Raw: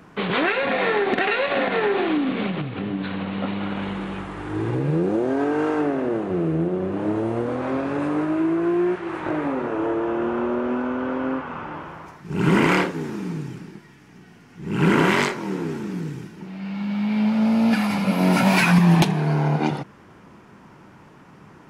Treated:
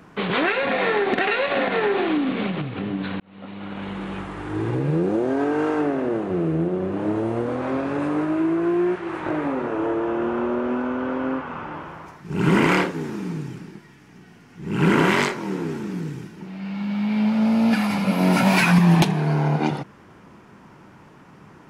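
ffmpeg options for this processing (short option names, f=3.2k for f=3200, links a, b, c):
-filter_complex "[0:a]asplit=2[a][b];[a]atrim=end=3.2,asetpts=PTS-STARTPTS,afade=t=out:st=3.196:d=0.004:c=hsin[c];[b]atrim=start=3.2,asetpts=PTS-STARTPTS,afade=t=in:d=0.97[d];[c][d]concat=n=2:v=0:a=1"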